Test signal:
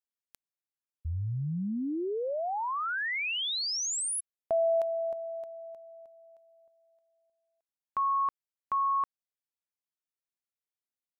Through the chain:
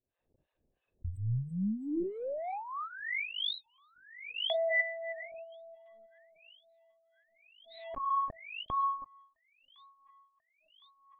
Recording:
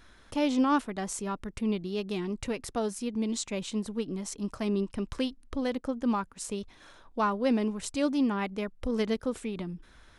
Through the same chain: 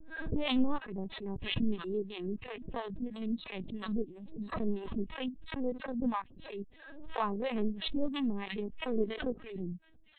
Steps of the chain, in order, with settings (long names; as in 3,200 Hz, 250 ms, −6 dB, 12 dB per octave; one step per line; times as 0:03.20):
adaptive Wiener filter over 41 samples
on a send: delay with a high-pass on its return 1,051 ms, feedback 65%, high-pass 2,100 Hz, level −20 dB
on the sum: linear-prediction vocoder at 8 kHz pitch kept
two-band tremolo in antiphase 3 Hz, depth 100%, crossover 660 Hz
in parallel at −1.5 dB: downward compressor, threshold −40 dBFS
on the sum: notch filter 1,400 Hz, Q 5.1
noise reduction from a noise print of the clip's start 9 dB
background raised ahead of every attack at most 61 dB per second